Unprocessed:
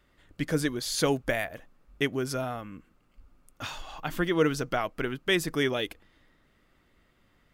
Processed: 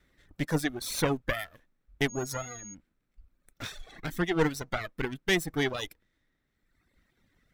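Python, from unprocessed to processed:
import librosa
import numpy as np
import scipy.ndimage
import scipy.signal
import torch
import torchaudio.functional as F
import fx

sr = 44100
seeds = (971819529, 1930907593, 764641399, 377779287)

y = fx.lower_of_two(x, sr, delay_ms=0.52)
y = fx.dereverb_blind(y, sr, rt60_s=1.4)
y = fx.dmg_tone(y, sr, hz=6600.0, level_db=-43.0, at=(2.08, 2.73), fade=0.02)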